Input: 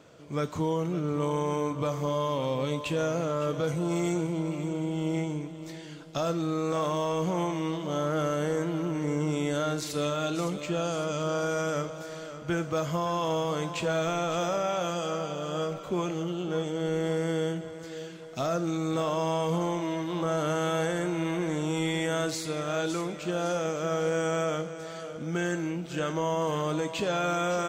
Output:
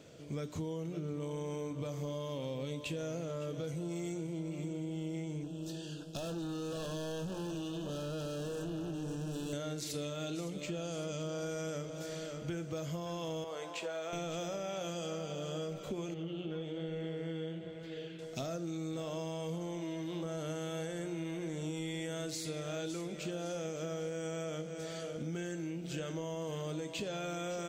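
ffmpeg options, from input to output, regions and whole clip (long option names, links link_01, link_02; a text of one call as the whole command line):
ffmpeg -i in.wav -filter_complex "[0:a]asettb=1/sr,asplit=3[link_01][link_02][link_03];[link_01]atrim=end=5.434[link_04];[link_02]atrim=start=5.43:end=9.53,asetpts=PTS-STARTPTS,afade=type=in:duration=0.004:curve=qsin,afade=type=out:start_time=4.096:duration=0.004:curve=qsin,volume=33.5dB,asoftclip=hard,volume=-33.5dB,asuperstop=centerf=2100:order=12:qfactor=2.9[link_05];[link_03]atrim=start=9.526[link_06];[link_04][link_05]acrossfade=duration=0.004:curve1=hsin:curve2=qsin[link_07];[link_07][link_06]acrossfade=duration=0.004:curve1=qsin:curve2=hsin,asettb=1/sr,asplit=3[link_08][link_09][link_10];[link_08]atrim=end=13.444[link_11];[link_09]atrim=start=13.44:end=14.13,asetpts=PTS-STARTPTS,afade=type=in:duration=0.004:curve=qsin,afade=type=out:start_time=0.686:duration=0.004:curve=qsin,highpass=890,tiltshelf=frequency=1300:gain=8.5[link_12];[link_10]atrim=start=14.126[link_13];[link_11][link_12]acrossfade=duration=0.004:curve1=hsin:curve2=qsin[link_14];[link_14][link_13]acrossfade=duration=0.004:curve1=qsin:curve2=hsin,asettb=1/sr,asplit=3[link_15][link_16][link_17];[link_15]atrim=end=16.144[link_18];[link_16]atrim=start=16.14:end=18.19,asetpts=PTS-STARTPTS,afade=type=in:duration=0.004:curve=qsin,afade=type=out:start_time=2.046:duration=0.004:curve=qsin,highshelf=frequency=4500:width_type=q:width=1.5:gain=-12,flanger=delay=4.7:depth=8.7:regen=-51:speed=1.2:shape=sinusoidal[link_19];[link_17]atrim=start=18.186[link_20];[link_18][link_19]acrossfade=duration=0.004:curve1=hsin:curve2=qsin[link_21];[link_21][link_20]acrossfade=duration=0.004:curve1=qsin:curve2=hsin,equalizer=frequency=1100:width=1.1:gain=-11,bandreject=frequency=60:width_type=h:width=6,bandreject=frequency=120:width_type=h:width=6,bandreject=frequency=180:width_type=h:width=6,bandreject=frequency=240:width_type=h:width=6,bandreject=frequency=300:width_type=h:width=6,bandreject=frequency=360:width_type=h:width=6,acompressor=threshold=-38dB:ratio=6,volume=1.5dB" out.wav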